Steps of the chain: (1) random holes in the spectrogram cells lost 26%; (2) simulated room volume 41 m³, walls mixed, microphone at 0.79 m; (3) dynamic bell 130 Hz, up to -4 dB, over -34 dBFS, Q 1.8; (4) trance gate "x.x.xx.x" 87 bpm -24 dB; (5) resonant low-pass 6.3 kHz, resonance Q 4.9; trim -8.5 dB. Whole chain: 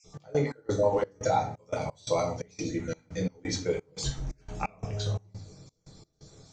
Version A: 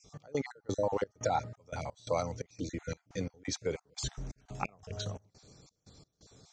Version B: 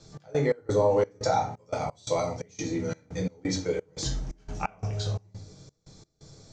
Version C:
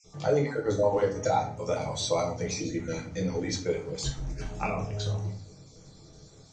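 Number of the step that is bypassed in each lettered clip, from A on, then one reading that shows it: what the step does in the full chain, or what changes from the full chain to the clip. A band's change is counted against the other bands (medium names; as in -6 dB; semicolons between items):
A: 2, 125 Hz band -2.0 dB; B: 1, momentary loudness spread change +2 LU; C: 4, 1 kHz band -1.5 dB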